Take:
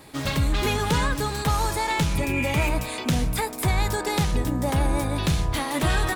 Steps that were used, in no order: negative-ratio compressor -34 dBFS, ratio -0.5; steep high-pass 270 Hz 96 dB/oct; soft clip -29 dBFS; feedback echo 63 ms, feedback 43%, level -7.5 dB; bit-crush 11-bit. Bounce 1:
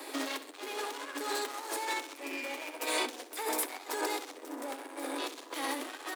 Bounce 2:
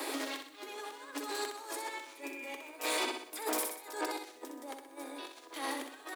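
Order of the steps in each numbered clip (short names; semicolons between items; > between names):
soft clip > feedback echo > negative-ratio compressor > steep high-pass > bit-crush; negative-ratio compressor > feedback echo > soft clip > steep high-pass > bit-crush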